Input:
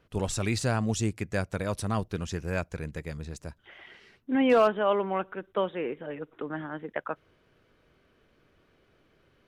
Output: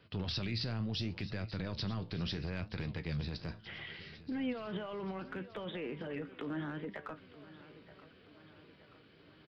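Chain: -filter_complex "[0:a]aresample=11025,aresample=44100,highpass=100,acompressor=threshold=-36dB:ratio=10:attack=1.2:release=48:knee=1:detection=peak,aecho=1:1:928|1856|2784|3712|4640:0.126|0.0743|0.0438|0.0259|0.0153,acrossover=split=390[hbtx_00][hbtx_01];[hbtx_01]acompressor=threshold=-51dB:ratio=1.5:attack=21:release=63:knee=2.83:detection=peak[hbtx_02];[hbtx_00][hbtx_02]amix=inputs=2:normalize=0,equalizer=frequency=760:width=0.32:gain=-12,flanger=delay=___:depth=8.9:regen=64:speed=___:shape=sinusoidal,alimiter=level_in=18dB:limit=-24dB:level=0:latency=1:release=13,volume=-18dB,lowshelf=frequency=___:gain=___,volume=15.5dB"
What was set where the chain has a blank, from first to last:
9.1, 0.71, 140, -4.5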